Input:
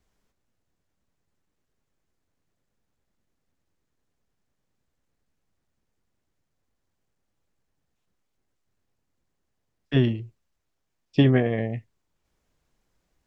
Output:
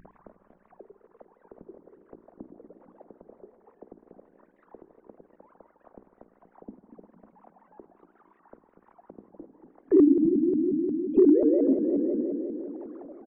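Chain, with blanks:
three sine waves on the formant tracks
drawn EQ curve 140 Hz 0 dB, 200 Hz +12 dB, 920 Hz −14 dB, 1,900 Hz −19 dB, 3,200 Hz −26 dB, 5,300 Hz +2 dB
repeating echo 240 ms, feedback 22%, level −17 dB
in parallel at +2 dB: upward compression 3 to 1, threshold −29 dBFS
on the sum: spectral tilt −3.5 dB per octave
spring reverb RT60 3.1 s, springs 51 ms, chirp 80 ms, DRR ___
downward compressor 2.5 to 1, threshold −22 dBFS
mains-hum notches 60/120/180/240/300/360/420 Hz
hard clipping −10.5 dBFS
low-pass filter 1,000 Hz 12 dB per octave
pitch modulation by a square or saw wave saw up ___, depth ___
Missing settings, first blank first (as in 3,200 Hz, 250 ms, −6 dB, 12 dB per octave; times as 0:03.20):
8.5 dB, 5.6 Hz, 250 cents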